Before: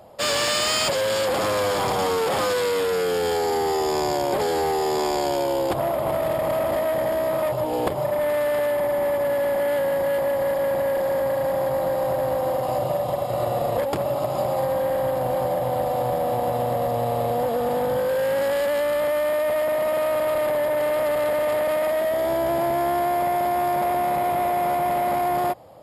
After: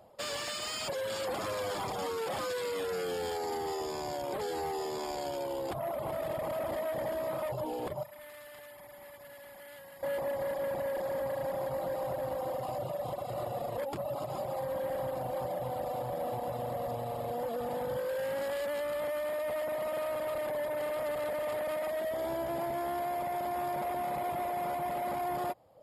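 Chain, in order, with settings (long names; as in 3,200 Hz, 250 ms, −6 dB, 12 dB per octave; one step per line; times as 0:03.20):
reverb reduction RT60 0.92 s
0:08.03–0:10.03: guitar amp tone stack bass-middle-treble 5-5-5
speech leveller 0.5 s
brickwall limiter −20.5 dBFS, peak gain reduction 9.5 dB
level −8 dB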